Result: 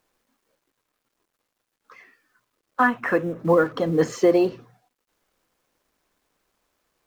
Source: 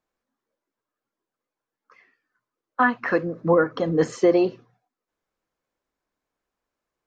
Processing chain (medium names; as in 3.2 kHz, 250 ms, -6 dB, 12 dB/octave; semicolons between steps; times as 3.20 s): companding laws mixed up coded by mu; 2.87–3.40 s: peaking EQ 4.5 kHz -14 dB 0.25 oct